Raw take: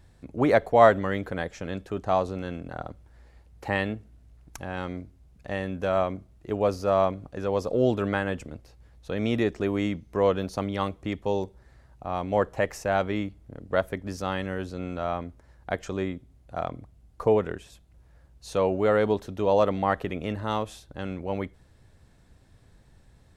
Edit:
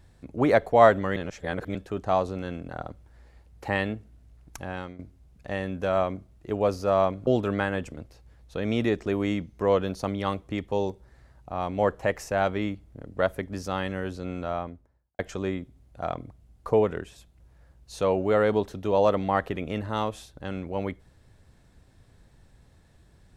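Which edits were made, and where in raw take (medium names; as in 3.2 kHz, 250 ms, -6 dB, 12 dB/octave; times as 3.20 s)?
1.16–1.75 s: reverse
4.70–4.99 s: fade out, to -14.5 dB
7.27–7.81 s: delete
14.92–15.73 s: studio fade out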